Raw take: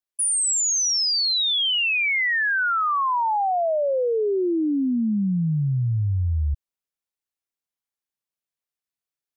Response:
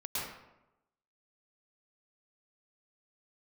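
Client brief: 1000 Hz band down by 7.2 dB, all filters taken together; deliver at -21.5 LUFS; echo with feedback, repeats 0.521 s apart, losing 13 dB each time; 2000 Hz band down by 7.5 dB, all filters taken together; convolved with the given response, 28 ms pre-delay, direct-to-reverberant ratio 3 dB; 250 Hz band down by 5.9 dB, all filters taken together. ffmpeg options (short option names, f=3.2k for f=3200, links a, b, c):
-filter_complex "[0:a]equalizer=f=250:t=o:g=-8,equalizer=f=1k:t=o:g=-7,equalizer=f=2k:t=o:g=-7.5,aecho=1:1:521|1042|1563:0.224|0.0493|0.0108,asplit=2[a][b];[1:a]atrim=start_sample=2205,adelay=28[c];[b][c]afir=irnorm=-1:irlink=0,volume=-7dB[d];[a][d]amix=inputs=2:normalize=0,volume=1dB"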